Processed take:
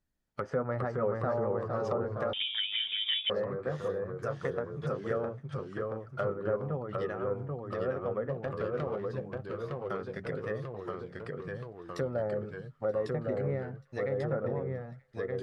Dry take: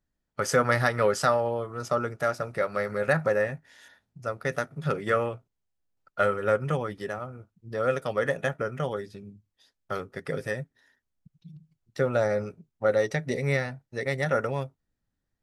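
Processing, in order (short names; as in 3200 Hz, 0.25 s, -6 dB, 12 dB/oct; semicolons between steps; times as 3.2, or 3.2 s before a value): 8.29–9.1 switching dead time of 0.18 ms; treble ducked by the level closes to 870 Hz, closed at -24.5 dBFS; in parallel at +2.5 dB: compressor, threshold -37 dBFS, peak gain reduction 17 dB; on the sum: echoes that change speed 0.387 s, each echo -1 st, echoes 3; on a send: thin delay 0.931 s, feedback 57%, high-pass 1600 Hz, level -23 dB; 2.33–3.3 on the sum: inverted band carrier 3600 Hz; gain -9 dB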